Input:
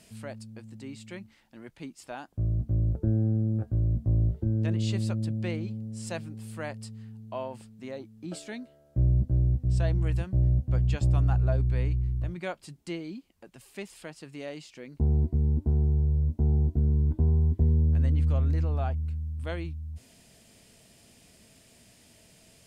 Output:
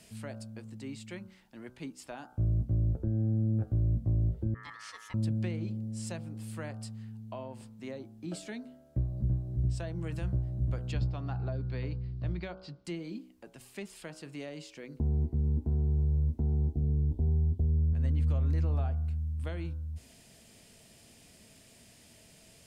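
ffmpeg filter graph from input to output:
-filter_complex "[0:a]asettb=1/sr,asplit=3[a][b][c];[a]atrim=end=4.544[d];[b]atrim=start=4.54:end=5.14,asetpts=PTS-STARTPTS,afade=t=in:d=0.004:c=qsin,afade=t=out:st=0.596:d=0.004:c=qsin,agate=range=-33dB:threshold=-23dB:ratio=3:release=100:detection=peak,highpass=410,aeval=exprs='val(0)*sin(2*PI*1500*n/s)':c=same[e];[c]atrim=start=5.136[f];[d][e]acrossfade=d=0.004:c1=hsin:c2=qsin[g];[g][f]acrossfade=d=0.004:c1=qsin:c2=hsin,asettb=1/sr,asplit=3[h][i][j];[h]atrim=end=10.924[k];[i]atrim=start=10.92:end=12.85,asetpts=PTS-STARTPTS,afade=t=in:d=0.004:c=qsin,afade=t=out:st=1.926:d=0.004:c=qsin,lowpass=f=4.6k:t=q:w=3.8,aemphasis=mode=reproduction:type=75kf[l];[j]atrim=start=12.846[m];[k][l]acrossfade=d=0.004:c1=hsin:c2=qsin[n];[n][m]acrossfade=d=0.004:c1=qsin:c2=hsin,asettb=1/sr,asplit=3[o][p][q];[o]atrim=end=16.734[r];[p]atrim=start=16.73:end=17.93,asetpts=PTS-STARTPTS,afade=t=in:d=0.004:c=qsin,afade=t=out:st=1.196:d=0.004:c=qsin,asplit=2[s][t];[t]adelay=20,volume=-12dB[u];[s][u]amix=inputs=2:normalize=0,atrim=end_sample=52920,asubboost=boost=6:cutoff=120,asuperstop=centerf=1600:order=8:qfactor=0.83[v];[q]atrim=start=17.926[w];[r][v]acrossfade=d=0.004:c1=hsin:c2=qsin[x];[x][w]acrossfade=d=0.004:c1=qsin:c2=hsin,bandreject=f=62.61:t=h:w=4,bandreject=f=125.22:t=h:w=4,bandreject=f=187.83:t=h:w=4,bandreject=f=250.44:t=h:w=4,bandreject=f=313.05:t=h:w=4,bandreject=f=375.66:t=h:w=4,bandreject=f=438.27:t=h:w=4,bandreject=f=500.88:t=h:w=4,bandreject=f=563.49:t=h:w=4,bandreject=f=626.1:t=h:w=4,bandreject=f=688.71:t=h:w=4,bandreject=f=751.32:t=h:w=4,bandreject=f=813.93:t=h:w=4,bandreject=f=876.54:t=h:w=4,bandreject=f=939.15:t=h:w=4,bandreject=f=1.00176k:t=h:w=4,bandreject=f=1.06437k:t=h:w=4,bandreject=f=1.12698k:t=h:w=4,bandreject=f=1.18959k:t=h:w=4,bandreject=f=1.2522k:t=h:w=4,bandreject=f=1.31481k:t=h:w=4,bandreject=f=1.37742k:t=h:w=4,bandreject=f=1.44003k:t=h:w=4,bandreject=f=1.50264k:t=h:w=4,bandreject=f=1.56525k:t=h:w=4,alimiter=limit=-21.5dB:level=0:latency=1:release=362,acrossover=split=280[y][z];[z]acompressor=threshold=-40dB:ratio=6[aa];[y][aa]amix=inputs=2:normalize=0"

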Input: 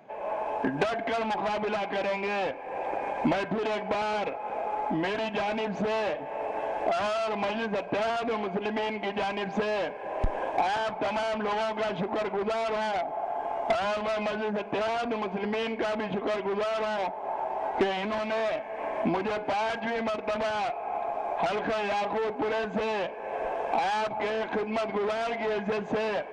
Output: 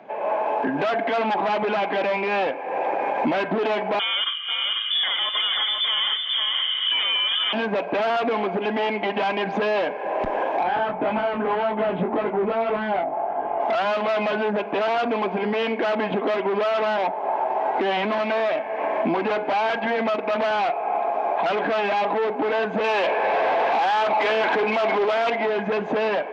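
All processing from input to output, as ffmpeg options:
-filter_complex "[0:a]asettb=1/sr,asplit=3[a][b][c];[a]atrim=end=3.994[d];[b]atrim=start=3.99:end=7.53,asetpts=PTS-STARTPTS,afade=t=in:d=0.004:c=qsin,afade=t=out:st=3.536:d=0.004:c=qsin,asuperstop=centerf=980:order=20:qfactor=2.9,aecho=1:1:492:0.596,atrim=end_sample=156114,lowpass=f=3.1k:t=q:w=0.5098,lowpass=f=3.1k:t=q:w=0.6013,lowpass=f=3.1k:t=q:w=0.9,lowpass=f=3.1k:t=q:w=2.563,afreqshift=-3700[e];[c]atrim=start=7.526[f];[d][e]acrossfade=d=0.004:c1=hsin:c2=qsin[g];[g][f]acrossfade=d=0.004:c1=qsin:c2=hsin,asettb=1/sr,asplit=3[h][i][j];[h]atrim=end=10.634[k];[i]atrim=start=10.63:end=13.6,asetpts=PTS-STARTPTS,afade=t=in:d=0.004:c=qsin,afade=t=out:st=2.966:d=0.004:c=qsin,lowpass=3.3k,aemphasis=mode=reproduction:type=bsi,flanger=delay=19:depth=3:speed=1.8[l];[j]atrim=start=13.596[m];[k][l]acrossfade=d=0.004:c1=hsin:c2=qsin[n];[n][m]acrossfade=d=0.004:c1=qsin:c2=hsin,asettb=1/sr,asplit=3[o][p][q];[o]atrim=end=22.844[r];[p]atrim=start=22.84:end=25.3,asetpts=PTS-STARTPTS,afade=t=in:d=0.004:c=qsin,afade=t=out:st=2.456:d=0.004:c=qsin,highshelf=f=3.3k:g=5,asplit=2[s][t];[t]highpass=f=720:p=1,volume=21dB,asoftclip=type=tanh:threshold=-17dB[u];[s][u]amix=inputs=2:normalize=0,lowpass=f=4k:p=1,volume=-6dB[v];[q]atrim=start=25.296[w];[r][v]acrossfade=d=0.004:c1=hsin:c2=qsin[x];[x][w]acrossfade=d=0.004:c1=qsin:c2=hsin,acrossover=split=170 4700:gain=0.0891 1 0.126[y][z][aa];[y][z][aa]amix=inputs=3:normalize=0,alimiter=limit=-23.5dB:level=0:latency=1:release=22,volume=8.5dB"

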